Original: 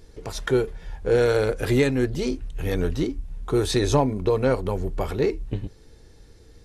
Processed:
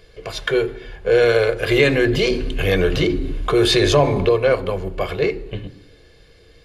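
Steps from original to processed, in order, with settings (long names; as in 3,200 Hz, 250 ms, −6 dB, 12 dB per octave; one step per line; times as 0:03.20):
convolution reverb RT60 0.85 s, pre-delay 3 ms, DRR 13 dB
0:01.71–0:04.29: envelope flattener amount 50%
level −1 dB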